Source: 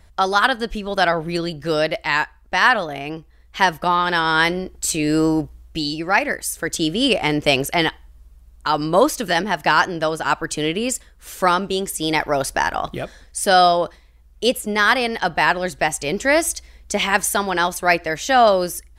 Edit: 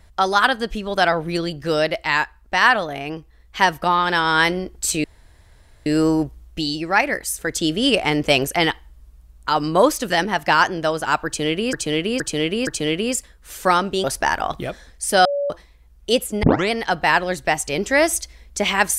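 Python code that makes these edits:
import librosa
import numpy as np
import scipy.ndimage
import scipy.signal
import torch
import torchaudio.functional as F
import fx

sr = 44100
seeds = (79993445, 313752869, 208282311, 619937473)

y = fx.edit(x, sr, fx.insert_room_tone(at_s=5.04, length_s=0.82),
    fx.repeat(start_s=10.44, length_s=0.47, count=4),
    fx.cut(start_s=11.81, length_s=0.57),
    fx.bleep(start_s=13.59, length_s=0.25, hz=569.0, db=-19.0),
    fx.tape_start(start_s=14.77, length_s=0.28), tone=tone)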